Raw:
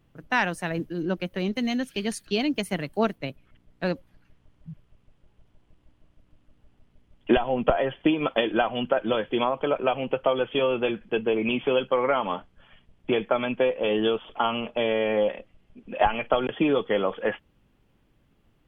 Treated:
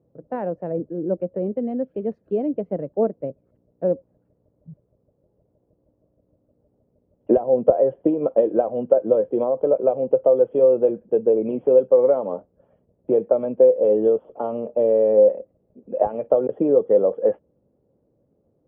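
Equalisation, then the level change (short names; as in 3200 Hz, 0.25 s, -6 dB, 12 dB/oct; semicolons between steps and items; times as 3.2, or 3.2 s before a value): HPF 87 Hz; synth low-pass 530 Hz, resonance Q 4; air absorption 84 m; -1.5 dB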